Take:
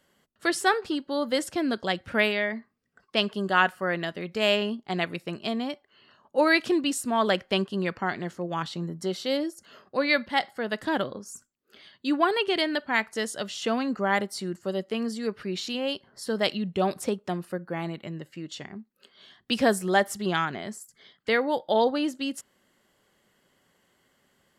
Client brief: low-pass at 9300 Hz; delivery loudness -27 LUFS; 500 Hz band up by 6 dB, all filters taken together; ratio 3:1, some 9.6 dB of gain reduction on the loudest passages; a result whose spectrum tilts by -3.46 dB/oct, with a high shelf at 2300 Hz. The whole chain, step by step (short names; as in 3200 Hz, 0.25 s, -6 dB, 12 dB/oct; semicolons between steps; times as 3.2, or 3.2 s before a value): LPF 9300 Hz; bell 500 Hz +7 dB; high shelf 2300 Hz +8 dB; compressor 3:1, threshold -25 dBFS; gain +2 dB